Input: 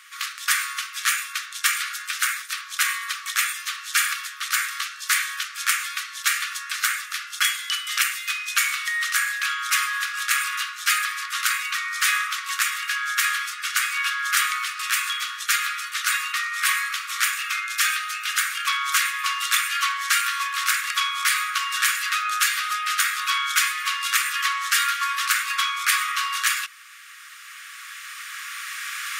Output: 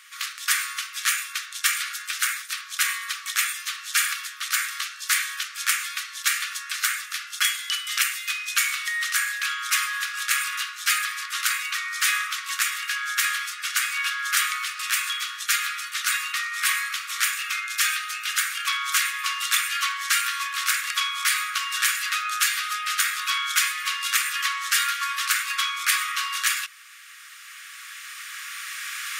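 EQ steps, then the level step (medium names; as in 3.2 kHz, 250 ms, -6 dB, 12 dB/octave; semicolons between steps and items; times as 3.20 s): high-pass 1.4 kHz 6 dB/octave; 0.0 dB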